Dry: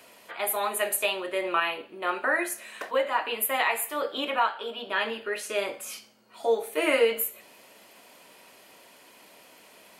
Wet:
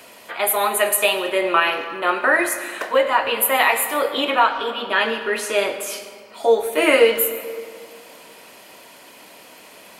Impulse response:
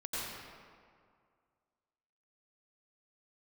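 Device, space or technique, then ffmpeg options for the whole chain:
saturated reverb return: -filter_complex "[0:a]asplit=2[s0][s1];[1:a]atrim=start_sample=2205[s2];[s1][s2]afir=irnorm=-1:irlink=0,asoftclip=type=tanh:threshold=0.158,volume=0.266[s3];[s0][s3]amix=inputs=2:normalize=0,volume=2.37"

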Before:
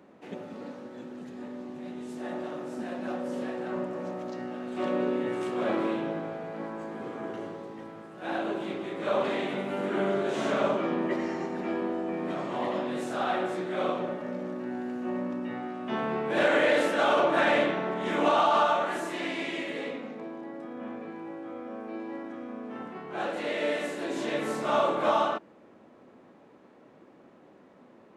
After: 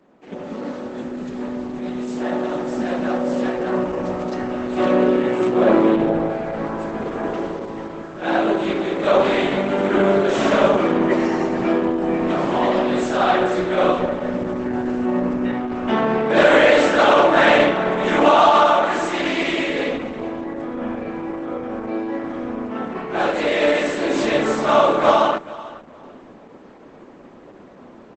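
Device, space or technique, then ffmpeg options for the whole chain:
video call: -filter_complex "[0:a]asettb=1/sr,asplit=3[s0][s1][s2];[s0]atrim=end=5.404[s3];[s1]atrim=start=5.4:end=6.3,asetpts=PTS-STARTPTS,afade=t=in:d=0.004:c=qsin,afade=t=out:st=0.896:d=0.004:c=qsin,tiltshelf=f=1200:g=4[s4];[s2]atrim=start=6.296[s5];[s3][s4]acrossfade=d=0.004:c1=hsin:c2=qsin[s6];[s6][s5]acrossfade=d=0.004:c1=qsin:c2=hsin,highpass=110,aecho=1:1:431|862:0.112|0.0213,dynaudnorm=f=260:g=3:m=4.47" -ar 48000 -c:a libopus -b:a 12k

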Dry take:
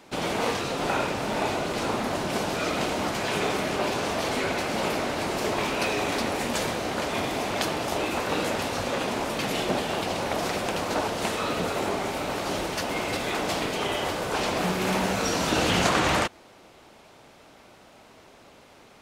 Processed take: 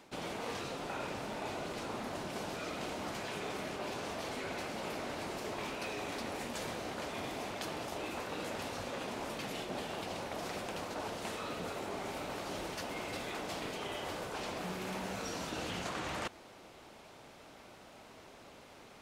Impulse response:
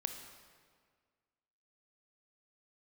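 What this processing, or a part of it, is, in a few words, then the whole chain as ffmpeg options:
compression on the reversed sound: -af "areverse,acompressor=threshold=0.0158:ratio=4,areverse,volume=0.708"

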